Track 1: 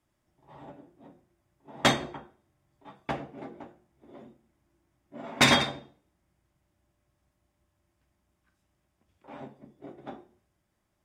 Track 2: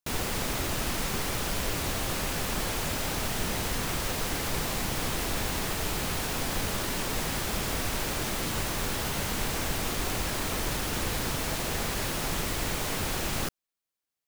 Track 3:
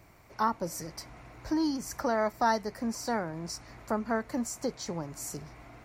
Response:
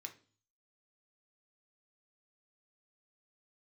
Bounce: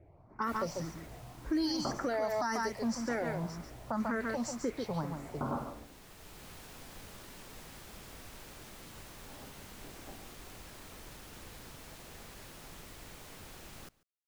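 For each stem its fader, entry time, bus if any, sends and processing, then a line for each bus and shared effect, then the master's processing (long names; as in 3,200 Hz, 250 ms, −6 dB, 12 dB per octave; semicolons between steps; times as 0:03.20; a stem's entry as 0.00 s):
−11.0 dB, 0.00 s, no send, echo send −11 dB, Butterworth low-pass 1,400 Hz 96 dB per octave
−19.5 dB, 0.40 s, no send, echo send −23.5 dB, automatic ducking −7 dB, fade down 1.30 s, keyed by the third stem
+2.5 dB, 0.00 s, no send, echo send −7 dB, low-pass that shuts in the quiet parts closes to 600 Hz, open at −24 dBFS; high-shelf EQ 2,700 Hz +9 dB; frequency shifter mixed with the dry sound +1.9 Hz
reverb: not used
echo: single-tap delay 142 ms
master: brickwall limiter −24.5 dBFS, peak gain reduction 11 dB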